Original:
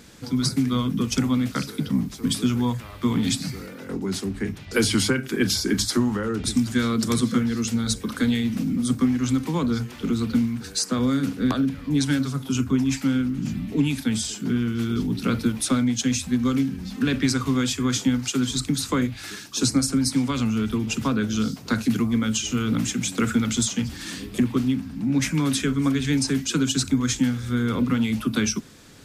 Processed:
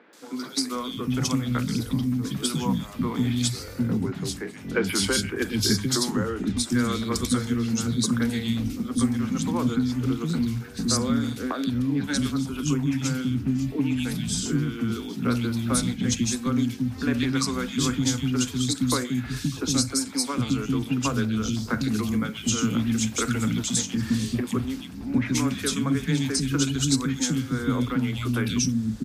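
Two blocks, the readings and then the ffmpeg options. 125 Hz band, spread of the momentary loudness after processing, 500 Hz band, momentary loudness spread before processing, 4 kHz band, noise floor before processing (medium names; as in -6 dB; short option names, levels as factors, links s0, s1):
-0.5 dB, 4 LU, -1.5 dB, 5 LU, -1.0 dB, -40 dBFS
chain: -filter_complex "[0:a]acrossover=split=290|2400[s0][s1][s2];[s2]adelay=130[s3];[s0]adelay=750[s4];[s4][s1][s3]amix=inputs=3:normalize=0"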